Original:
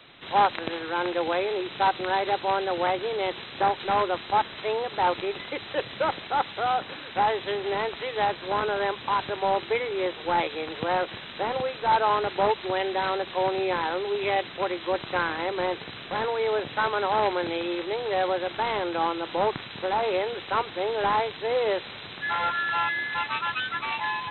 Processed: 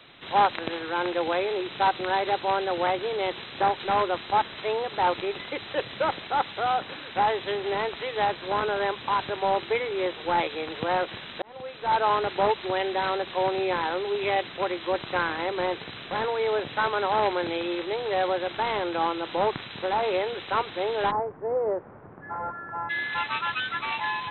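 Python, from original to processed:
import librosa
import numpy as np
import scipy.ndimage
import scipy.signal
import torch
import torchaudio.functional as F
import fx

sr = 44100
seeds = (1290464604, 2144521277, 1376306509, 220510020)

y = fx.bessel_lowpass(x, sr, hz=850.0, order=6, at=(21.1, 22.89), fade=0.02)
y = fx.edit(y, sr, fx.fade_in_span(start_s=11.42, length_s=0.64), tone=tone)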